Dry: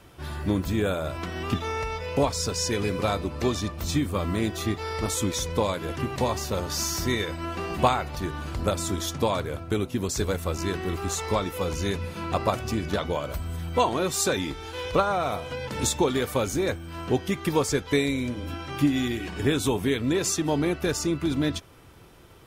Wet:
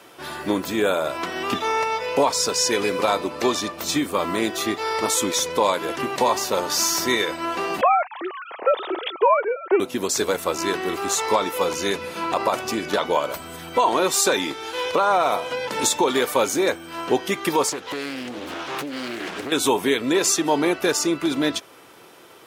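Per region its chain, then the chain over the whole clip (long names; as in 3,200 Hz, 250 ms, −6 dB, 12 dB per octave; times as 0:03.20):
0:07.81–0:09.80: three sine waves on the formant tracks + highs frequency-modulated by the lows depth 0.11 ms
0:17.69–0:19.52: downward compressor 16 to 1, threshold −29 dBFS + highs frequency-modulated by the lows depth 0.61 ms
whole clip: high-pass filter 340 Hz 12 dB per octave; dynamic equaliser 950 Hz, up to +6 dB, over −44 dBFS, Q 5.3; boost into a limiter +15 dB; level −7.5 dB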